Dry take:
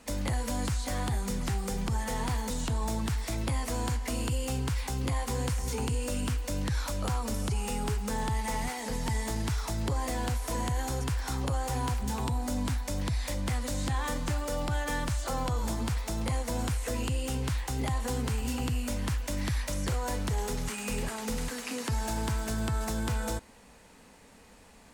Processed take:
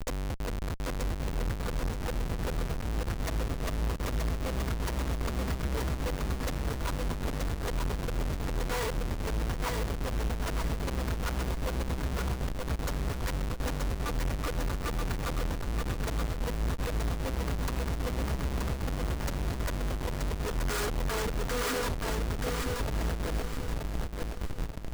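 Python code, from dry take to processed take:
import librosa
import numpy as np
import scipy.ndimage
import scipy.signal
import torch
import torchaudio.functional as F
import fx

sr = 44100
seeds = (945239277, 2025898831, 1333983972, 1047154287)

p1 = scipy.ndimage.median_filter(x, 5, mode='constant')
p2 = fx.bass_treble(p1, sr, bass_db=4, treble_db=5)
p3 = p2 + 0.7 * np.pad(p2, (int(4.2 * sr / 1000.0), 0))[:len(p2)]
p4 = fx.dynamic_eq(p3, sr, hz=970.0, q=0.95, threshold_db=-48.0, ratio=4.0, max_db=6)
p5 = fx.over_compress(p4, sr, threshold_db=-32.0, ratio=-0.5)
p6 = fx.fixed_phaser(p5, sr, hz=790.0, stages=6)
p7 = fx.schmitt(p6, sr, flips_db=-37.5)
p8 = p7 + fx.echo_feedback(p7, sr, ms=928, feedback_pct=37, wet_db=-3.5, dry=0)
y = p8 * 10.0 ** (5.0 / 20.0)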